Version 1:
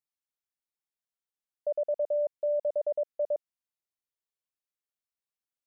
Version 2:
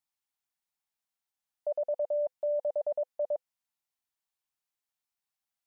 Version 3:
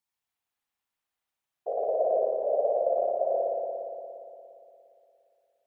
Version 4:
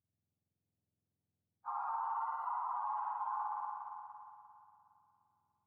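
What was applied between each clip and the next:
FFT filter 230 Hz 0 dB, 510 Hz -6 dB, 790 Hz +7 dB, 1.2 kHz +3 dB
whisper effect; spring tank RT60 2.8 s, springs 58 ms, chirp 75 ms, DRR -4.5 dB
spectrum inverted on a logarithmic axis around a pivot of 760 Hz; peak limiter -25 dBFS, peak gain reduction 6 dB; trim -5.5 dB

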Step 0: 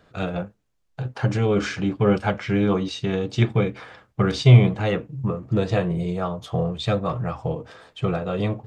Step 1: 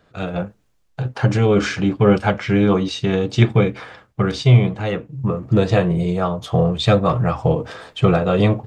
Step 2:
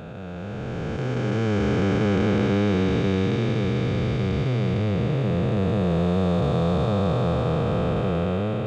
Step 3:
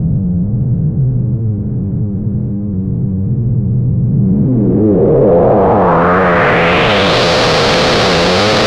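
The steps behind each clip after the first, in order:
level rider gain up to 16.5 dB; trim -1 dB
spectral blur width 1310 ms
overdrive pedal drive 30 dB, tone 1.5 kHz, clips at -9.5 dBFS; Schmitt trigger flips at -28 dBFS; low-pass sweep 140 Hz -> 4.5 kHz, 4.03–7.25 s; trim +6.5 dB

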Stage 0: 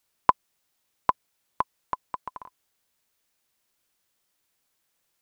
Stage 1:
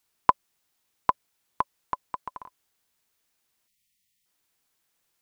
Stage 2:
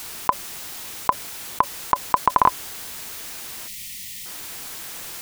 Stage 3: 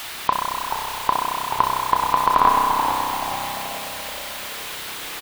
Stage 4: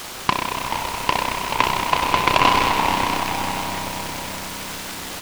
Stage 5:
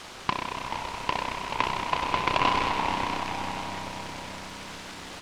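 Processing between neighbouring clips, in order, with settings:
spectral selection erased 3.67–4.25 s, 240–1800 Hz; band-stop 570 Hz, Q 12
level flattener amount 100%
frequency-shifting echo 431 ms, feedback 46%, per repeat -110 Hz, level -8 dB; spring tank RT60 3.3 s, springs 31 ms, chirp 40 ms, DRR -1.5 dB; band noise 690–4200 Hz -35 dBFS; trim -1 dB
echo with a slow build-up 93 ms, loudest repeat 5, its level -16 dB; delay time shaken by noise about 1.4 kHz, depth 0.11 ms
distance through air 63 m; trim -7.5 dB

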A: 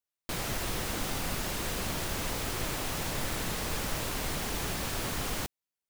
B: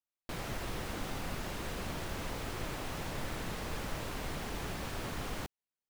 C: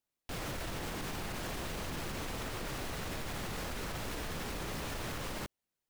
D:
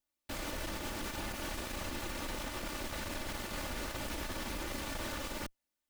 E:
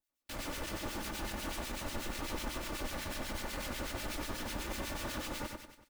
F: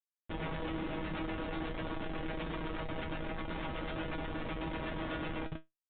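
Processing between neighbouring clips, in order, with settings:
treble shelf 4.1 kHz -9.5 dB; trim -4 dB
in parallel at -9.5 dB: sample-rate reducer 1.3 kHz; on the sum: peak limiter -30.5 dBFS, peak gain reduction 7 dB; wavefolder -38.5 dBFS; trim +4.5 dB
comb filter that takes the minimum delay 3.4 ms; trim +1.5 dB
on a send: feedback delay 94 ms, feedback 51%, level -4 dB; on the sum: harmonic tremolo 8.1 Hz, depth 70%, crossover 1.7 kHz; trim +1.5 dB
Schmitt trigger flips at -37.5 dBFS; feedback comb 160 Hz, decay 0.16 s, harmonics all, mix 90%; resampled via 8 kHz; trim +11 dB

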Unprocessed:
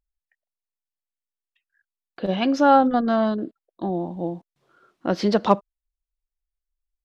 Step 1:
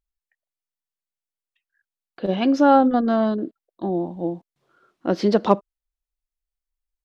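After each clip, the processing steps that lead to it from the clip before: dynamic bell 340 Hz, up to +6 dB, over -31 dBFS, Q 0.95; trim -2 dB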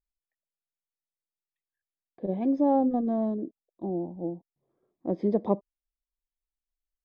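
boxcar filter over 31 samples; trim -6 dB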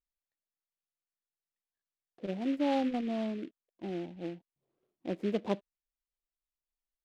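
delay time shaken by noise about 2.2 kHz, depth 0.049 ms; trim -6.5 dB

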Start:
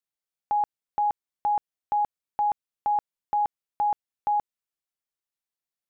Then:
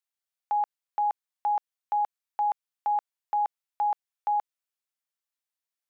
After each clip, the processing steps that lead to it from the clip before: high-pass 680 Hz 12 dB/octave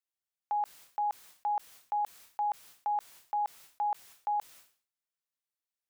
decay stretcher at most 130 dB/s; trim -5 dB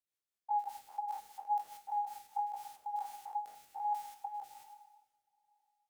spectrogram pixelated in time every 100 ms; two-slope reverb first 0.57 s, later 2.6 s, from -14 dB, DRR 6.5 dB; rotary cabinet horn 5 Hz, later 1.2 Hz, at 2.12 s; trim +1 dB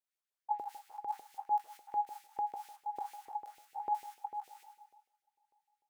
LFO high-pass saw up 6.7 Hz 390–2400 Hz; trim -3.5 dB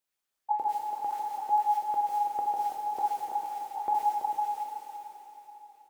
on a send: delay 332 ms -8 dB; on the sum: plate-style reverb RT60 3.9 s, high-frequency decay 0.95×, DRR -0.5 dB; trim +5.5 dB

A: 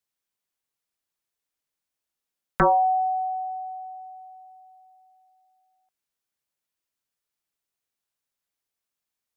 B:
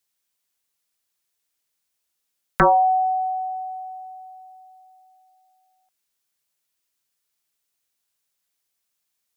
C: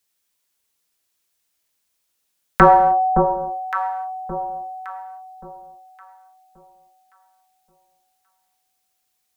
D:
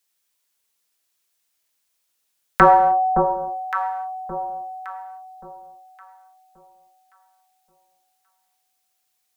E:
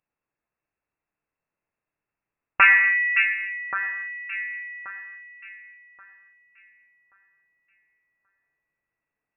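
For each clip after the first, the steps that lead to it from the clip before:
treble shelf 2.3 kHz +7.5 dB; trim +2.5 dB
echo whose repeats swap between lows and highs 565 ms, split 890 Hz, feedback 51%, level -4 dB; gated-style reverb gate 330 ms falling, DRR 5 dB; trim +3.5 dB
bass shelf 340 Hz -6.5 dB
octave divider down 2 oct, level +3 dB; frequency inversion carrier 2.7 kHz; trim -3.5 dB

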